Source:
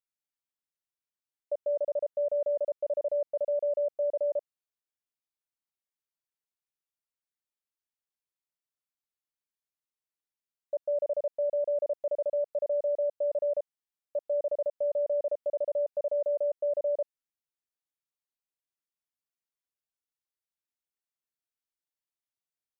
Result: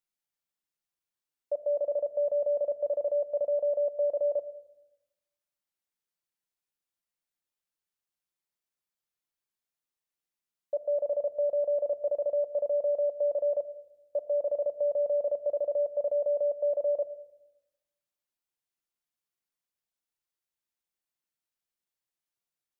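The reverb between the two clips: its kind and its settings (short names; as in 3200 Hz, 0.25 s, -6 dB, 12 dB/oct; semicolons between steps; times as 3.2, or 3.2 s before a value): shoebox room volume 3200 m³, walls furnished, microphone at 0.87 m; gain +1.5 dB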